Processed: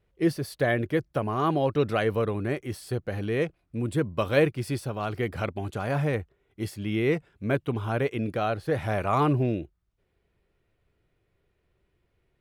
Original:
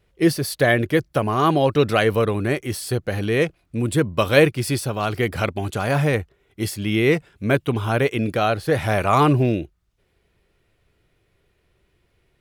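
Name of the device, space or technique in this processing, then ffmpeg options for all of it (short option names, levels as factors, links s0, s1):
behind a face mask: -af "highshelf=f=2700:g=-8,volume=0.473"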